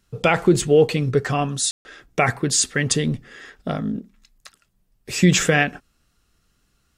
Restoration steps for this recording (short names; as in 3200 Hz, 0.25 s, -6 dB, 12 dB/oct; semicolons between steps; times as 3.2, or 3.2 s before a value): room tone fill 1.71–1.85